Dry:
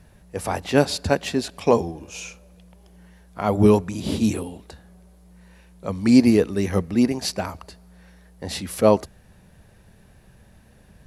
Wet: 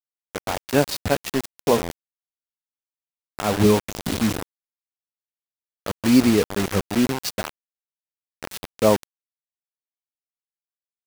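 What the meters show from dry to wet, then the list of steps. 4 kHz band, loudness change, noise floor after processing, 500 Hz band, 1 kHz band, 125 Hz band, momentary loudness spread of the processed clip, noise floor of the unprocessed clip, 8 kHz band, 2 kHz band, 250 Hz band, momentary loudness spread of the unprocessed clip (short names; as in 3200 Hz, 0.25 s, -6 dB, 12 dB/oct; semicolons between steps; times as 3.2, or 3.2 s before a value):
+1.5 dB, -0.5 dB, under -85 dBFS, -1.5 dB, -0.5 dB, -2.0 dB, 18 LU, -53 dBFS, +2.5 dB, +2.0 dB, -1.5 dB, 18 LU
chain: LPF 8600 Hz 12 dB/oct; bit-crush 4-bit; gain -1.5 dB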